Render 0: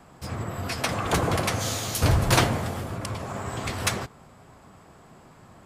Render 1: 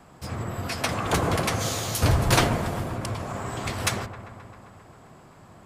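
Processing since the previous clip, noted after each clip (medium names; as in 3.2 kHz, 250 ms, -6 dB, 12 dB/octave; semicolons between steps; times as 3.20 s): feedback echo behind a low-pass 132 ms, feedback 73%, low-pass 1.5 kHz, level -11.5 dB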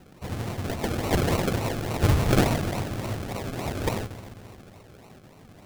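decimation with a swept rate 37×, swing 60% 3.5 Hz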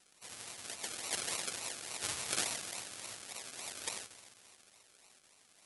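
differentiator; trim +1 dB; AC-3 64 kbps 48 kHz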